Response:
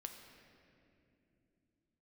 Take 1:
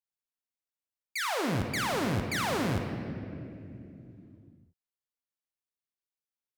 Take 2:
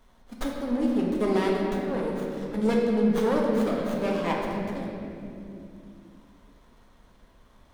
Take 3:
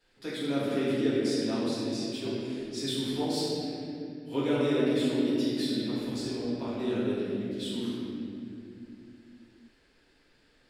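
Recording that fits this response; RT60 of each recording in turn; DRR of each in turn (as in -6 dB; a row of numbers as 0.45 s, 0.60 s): 1; 2.8 s, 2.7 s, 2.7 s; 4.0 dB, -3.0 dB, -10.0 dB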